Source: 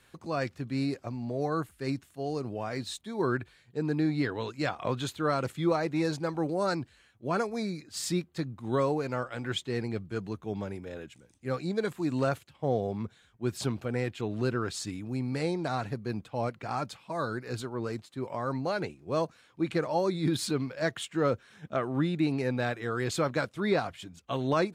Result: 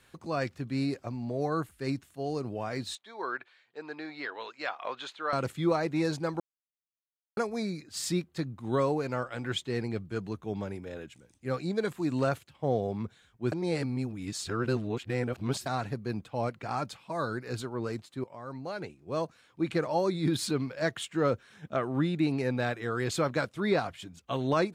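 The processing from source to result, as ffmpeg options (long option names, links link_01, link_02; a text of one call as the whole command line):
ffmpeg -i in.wav -filter_complex "[0:a]asettb=1/sr,asplit=3[link_01][link_02][link_03];[link_01]atrim=end=2.954[link_04];[link_02]atrim=start=2.95:end=5.33,asetpts=PTS-STARTPTS,afade=type=in:duration=0.004:curve=qsin,afade=type=out:start_time=2.376:duration=0.004:curve=qsin,highpass=700,lowpass=4000[link_05];[link_03]atrim=start=5.326[link_06];[link_04][link_05]acrossfade=duration=0.004:curve1=hsin:curve2=qsin[link_07];[link_07][link_06]acrossfade=duration=0.004:curve1=qsin:curve2=hsin,asplit=6[link_08][link_09][link_10][link_11][link_12][link_13];[link_08]atrim=end=6.4,asetpts=PTS-STARTPTS,afade=type=out:start_time=6.396:duration=0.004:curve=hsin[link_14];[link_09]atrim=start=6.4:end=7.37,asetpts=PTS-STARTPTS,volume=0[link_15];[link_10]atrim=start=7.37:end=13.522,asetpts=PTS-STARTPTS,afade=type=in:duration=0.004:curve=hsin[link_16];[link_11]atrim=start=13.518:end=15.662,asetpts=PTS-STARTPTS,areverse[link_17];[link_12]atrim=start=15.658:end=18.24,asetpts=PTS-STARTPTS,afade=type=out:start_time=2.578:duration=0.004:curve=hsin:silence=0.223872[link_18];[link_13]atrim=start=18.24,asetpts=PTS-STARTPTS,afade=type=in:duration=1.45:silence=0.223872[link_19];[link_14][link_15][link_16]concat=n=3:v=0:a=1[link_20];[link_20][link_17]acrossfade=duration=0.004:curve1=hsin:curve2=hsin[link_21];[link_18][link_19]concat=n=2:v=0:a=1[link_22];[link_21][link_22]acrossfade=duration=0.004:curve1=hsin:curve2=hsin" out.wav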